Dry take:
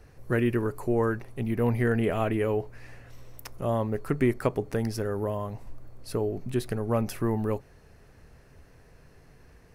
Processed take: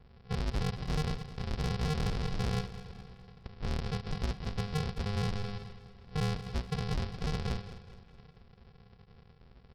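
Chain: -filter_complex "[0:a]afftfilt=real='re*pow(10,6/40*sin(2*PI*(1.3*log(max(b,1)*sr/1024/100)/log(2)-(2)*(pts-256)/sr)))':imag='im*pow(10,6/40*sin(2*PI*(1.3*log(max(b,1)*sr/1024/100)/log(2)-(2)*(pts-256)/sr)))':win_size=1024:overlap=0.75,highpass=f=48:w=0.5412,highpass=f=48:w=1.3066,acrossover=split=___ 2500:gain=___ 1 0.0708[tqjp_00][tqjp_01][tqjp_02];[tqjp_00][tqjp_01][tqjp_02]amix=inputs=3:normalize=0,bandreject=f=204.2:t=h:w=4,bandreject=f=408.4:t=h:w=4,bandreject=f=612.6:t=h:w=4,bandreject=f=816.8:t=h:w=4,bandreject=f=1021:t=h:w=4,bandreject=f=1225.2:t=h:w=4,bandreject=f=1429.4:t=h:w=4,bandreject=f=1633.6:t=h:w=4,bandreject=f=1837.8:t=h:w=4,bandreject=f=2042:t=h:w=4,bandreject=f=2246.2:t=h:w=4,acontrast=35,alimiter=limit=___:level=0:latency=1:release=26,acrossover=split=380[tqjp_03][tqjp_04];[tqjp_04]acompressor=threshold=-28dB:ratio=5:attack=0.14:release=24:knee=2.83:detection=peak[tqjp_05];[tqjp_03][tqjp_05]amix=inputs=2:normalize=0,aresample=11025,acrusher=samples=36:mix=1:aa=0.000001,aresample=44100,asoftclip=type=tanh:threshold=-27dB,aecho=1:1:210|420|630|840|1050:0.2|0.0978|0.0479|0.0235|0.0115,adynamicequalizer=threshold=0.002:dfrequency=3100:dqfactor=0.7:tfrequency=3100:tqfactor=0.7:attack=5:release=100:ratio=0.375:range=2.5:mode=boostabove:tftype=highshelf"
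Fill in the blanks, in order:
360, 0.2, -15dB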